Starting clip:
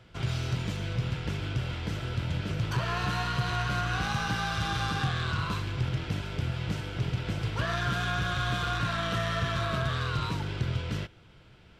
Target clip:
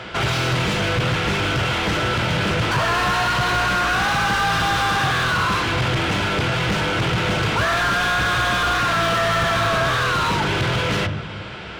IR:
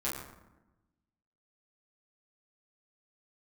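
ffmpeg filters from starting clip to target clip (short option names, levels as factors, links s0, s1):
-filter_complex "[0:a]aresample=22050,aresample=44100,asplit=2[s0][s1];[s1]lowshelf=f=190:g=11[s2];[1:a]atrim=start_sample=2205[s3];[s2][s3]afir=irnorm=-1:irlink=0,volume=0.119[s4];[s0][s4]amix=inputs=2:normalize=0,asplit=2[s5][s6];[s6]highpass=f=720:p=1,volume=39.8,asoftclip=type=tanh:threshold=0.178[s7];[s5][s7]amix=inputs=2:normalize=0,lowpass=f=2400:p=1,volume=0.501,volume=1.41"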